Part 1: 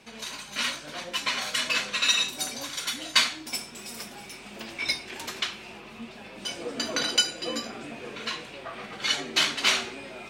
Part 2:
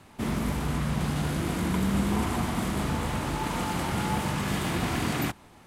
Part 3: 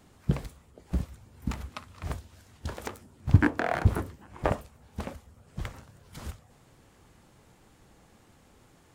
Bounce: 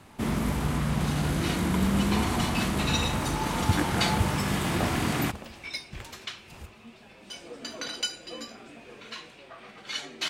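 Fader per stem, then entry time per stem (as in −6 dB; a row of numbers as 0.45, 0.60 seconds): −8.0, +1.0, −6.0 decibels; 0.85, 0.00, 0.35 seconds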